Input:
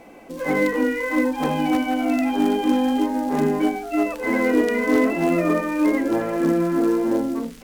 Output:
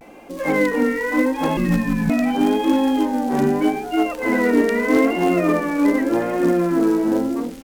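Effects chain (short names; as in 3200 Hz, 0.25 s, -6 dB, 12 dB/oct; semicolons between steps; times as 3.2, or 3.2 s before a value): 1.57–2.1 frequency shift -480 Hz; vibrato 0.82 Hz 84 cents; outdoor echo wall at 55 m, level -18 dB; gain +2 dB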